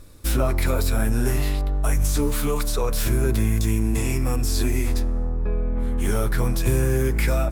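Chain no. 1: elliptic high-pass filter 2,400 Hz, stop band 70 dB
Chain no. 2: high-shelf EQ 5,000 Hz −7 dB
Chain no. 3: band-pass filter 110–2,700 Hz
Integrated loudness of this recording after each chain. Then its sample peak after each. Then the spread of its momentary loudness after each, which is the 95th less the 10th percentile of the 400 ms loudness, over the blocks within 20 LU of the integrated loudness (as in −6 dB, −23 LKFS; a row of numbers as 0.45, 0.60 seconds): −33.5, −24.0, −27.5 LKFS; −17.5, −9.5, −11.0 dBFS; 6, 5, 7 LU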